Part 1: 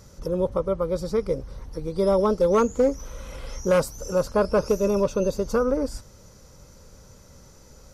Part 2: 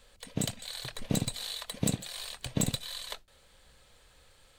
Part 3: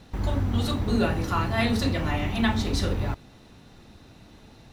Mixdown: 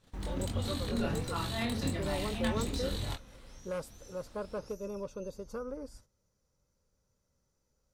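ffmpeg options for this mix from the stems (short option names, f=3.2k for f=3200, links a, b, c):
-filter_complex "[0:a]equalizer=f=9.7k:t=o:w=0.22:g=3.5,volume=-17.5dB[a];[1:a]acompressor=threshold=-33dB:ratio=4,flanger=delay=17.5:depth=7.2:speed=1.4,volume=-0.5dB[b];[2:a]flanger=delay=22.5:depth=3.9:speed=1.6,volume=-7.5dB[c];[a][b][c]amix=inputs=3:normalize=0,agate=range=-11dB:threshold=-57dB:ratio=16:detection=peak"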